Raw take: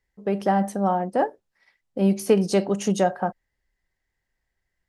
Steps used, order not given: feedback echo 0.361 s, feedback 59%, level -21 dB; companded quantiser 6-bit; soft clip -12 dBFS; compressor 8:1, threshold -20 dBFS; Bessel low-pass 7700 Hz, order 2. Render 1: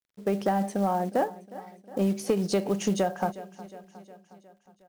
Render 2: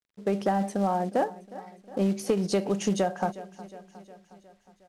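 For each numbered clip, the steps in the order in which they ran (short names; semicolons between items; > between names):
Bessel low-pass > companded quantiser > feedback echo > compressor > soft clip; feedback echo > compressor > soft clip > companded quantiser > Bessel low-pass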